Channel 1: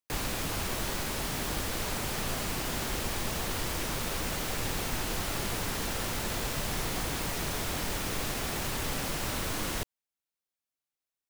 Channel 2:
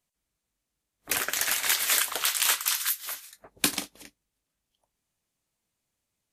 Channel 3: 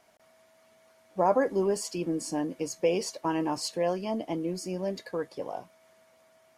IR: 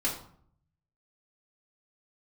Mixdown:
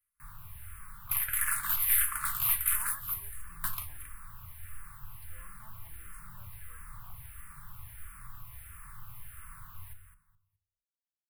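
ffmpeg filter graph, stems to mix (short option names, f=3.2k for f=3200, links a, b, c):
-filter_complex "[0:a]lowshelf=f=420:g=7,flanger=delay=9.7:depth=1.5:regen=71:speed=1:shape=triangular,adelay=100,volume=-14dB,asplit=3[a][b][c];[b]volume=-10.5dB[d];[c]volume=-7.5dB[e];[1:a]aeval=exprs='(tanh(14.1*val(0)+0.65)-tanh(0.65))/14.1':c=same,volume=-1dB,asplit=2[f][g];[g]volume=-9.5dB[h];[2:a]adelay=1550,volume=-13dB,asplit=3[i][j][k];[i]atrim=end=4.13,asetpts=PTS-STARTPTS,afade=t=out:st=4.126:d=0.004:c=hsin[l];[j]atrim=start=4.13:end=5.22,asetpts=PTS-STARTPTS,volume=0[m];[k]atrim=start=5.22,asetpts=PTS-STARTPTS,afade=t=in:d=0.004:c=hsin[n];[l][m][n]concat=n=3:v=0:a=1[o];[3:a]atrim=start_sample=2205[p];[d][h]amix=inputs=2:normalize=0[q];[q][p]afir=irnorm=-1:irlink=0[r];[e]aecho=0:1:210|420|630:1|0.21|0.0441[s];[a][f][o][r][s]amix=inputs=5:normalize=0,firequalizer=gain_entry='entry(130,0);entry(260,-28);entry(620,-24);entry(1100,4);entry(3500,-12);entry(6100,-21);entry(10000,7)':delay=0.05:min_phase=1,asplit=2[t][u];[u]afreqshift=-1.5[v];[t][v]amix=inputs=2:normalize=1"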